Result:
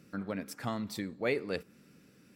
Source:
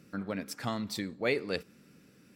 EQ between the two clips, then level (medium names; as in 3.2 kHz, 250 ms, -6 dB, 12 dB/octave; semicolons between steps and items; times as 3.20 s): dynamic bell 4.5 kHz, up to -5 dB, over -50 dBFS, Q 0.77; -1.0 dB